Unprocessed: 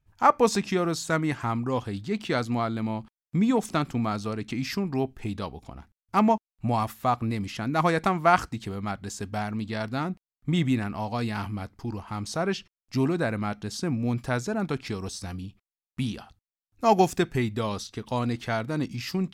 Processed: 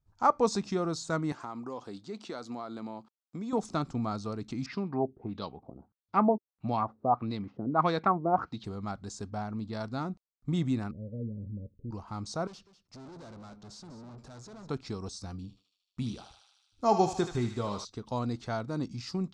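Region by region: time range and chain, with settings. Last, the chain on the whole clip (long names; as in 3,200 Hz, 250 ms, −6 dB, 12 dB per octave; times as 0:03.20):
0:01.32–0:03.53: high-pass filter 270 Hz + downward compressor 4 to 1, threshold −29 dBFS
0:04.66–0:08.64: high-pass filter 120 Hz + auto-filter low-pass sine 1.6 Hz 400–4,000 Hz
0:09.30–0:09.73: low-pass filter 11,000 Hz + high-shelf EQ 3,500 Hz −7.5 dB
0:10.91–0:11.91: Chebyshev low-pass filter 570 Hz, order 8 + parametric band 330 Hz −8.5 dB 0.54 octaves
0:12.47–0:14.69: high-pass filter 42 Hz + tube saturation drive 41 dB, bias 0.35 + single-tap delay 197 ms −13.5 dB
0:15.42–0:17.85: double-tracking delay 25 ms −12 dB + feedback echo with a high-pass in the loop 76 ms, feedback 75%, high-pass 1,000 Hz, level −6 dB
whole clip: low-pass filter 7,700 Hz 24 dB per octave; flat-topped bell 2,300 Hz −9 dB 1.2 octaves; level −5 dB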